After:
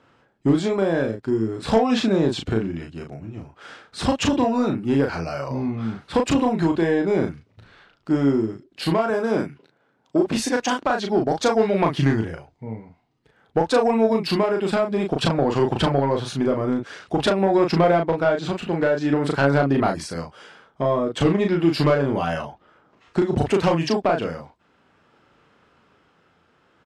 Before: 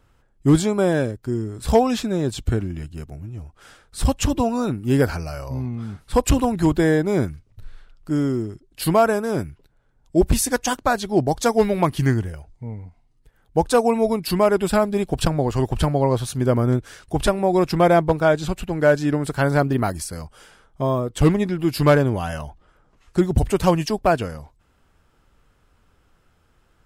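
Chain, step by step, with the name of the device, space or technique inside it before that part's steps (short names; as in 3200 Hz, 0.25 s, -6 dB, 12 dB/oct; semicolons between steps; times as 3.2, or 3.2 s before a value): AM radio (BPF 180–4200 Hz; compressor 6:1, threshold -20 dBFS, peak gain reduction 10.5 dB; soft clip -14.5 dBFS, distortion -20 dB; tremolo 0.51 Hz, depth 28%); 9.1–10.36 HPF 150 Hz 12 dB/oct; doubler 36 ms -4 dB; gain +6 dB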